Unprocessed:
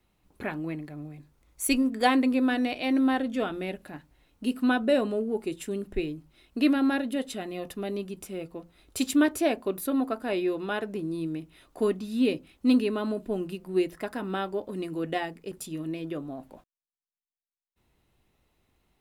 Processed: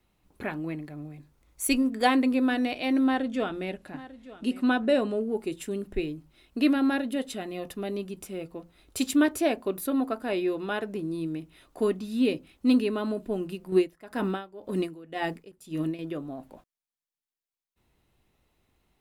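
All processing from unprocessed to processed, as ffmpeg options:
-filter_complex "[0:a]asettb=1/sr,asplit=3[a][b][c];[a]atrim=end=3.044[d];[b]atrim=start=3.04:end=5.21,asetpts=PTS-STARTPTS,afade=t=in:d=0.004:c=qsin,afade=t=out:st=2.166:d=0.004:c=qsin,lowpass=10k,aecho=1:1:896:0.133,atrim=end_sample=95697[e];[c]atrim=start=5.206[f];[d][e]acrossfade=d=0.004:c1=hsin:c2=qsin[g];[g][f]acrossfade=d=0.004:c1=qsin:c2=hsin,asettb=1/sr,asplit=3[h][i][j];[h]atrim=end=13.724[k];[i]atrim=start=13.72:end=15.99,asetpts=PTS-STARTPTS,afade=t=in:d=0.004:c=qsin,afade=t=out:st=2.266:d=0.004:c=qsin,acontrast=76,aeval=exprs='val(0)*pow(10,-23*(0.5-0.5*cos(2*PI*1.9*n/s))/20)':c=same[l];[j]atrim=start=15.986[m];[k][l]acrossfade=d=0.004:c1=hsin:c2=qsin[n];[n][m]acrossfade=d=0.004:c1=qsin:c2=hsin"

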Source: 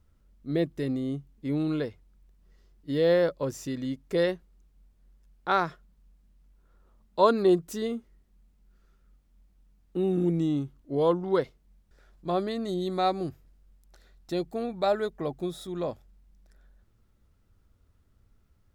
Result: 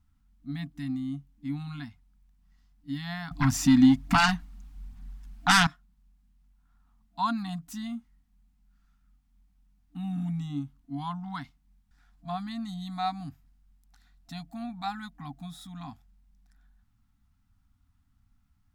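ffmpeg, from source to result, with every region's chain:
-filter_complex "[0:a]asettb=1/sr,asplit=3[a][b][c];[a]atrim=end=3.314[d];[b]atrim=start=3.31:end=5.67,asetpts=PTS-STARTPTS,afade=t=in:d=0.004:c=qsin,afade=t=out:st=2.356:d=0.004:c=qsin,highshelf=f=7.5k:g=-5,aeval=exprs='0.266*sin(PI/2*4.47*val(0)/0.266)':c=same,aphaser=in_gain=1:out_gain=1:delay=4.5:decay=0.35:speed=1.2:type=sinusoidal[e];[c]atrim=start=5.666[f];[d][e]acrossfade=d=0.004:c1=hsin:c2=qsin[g];[g][f]acrossfade=d=0.004:c1=qsin:c2=hsin,afftfilt=real='re*(1-between(b*sr/4096,300,680))':imag='im*(1-between(b*sr/4096,300,680))':win_size=4096:overlap=0.75,equalizer=f=230:w=1.5:g=2,volume=-3.5dB"

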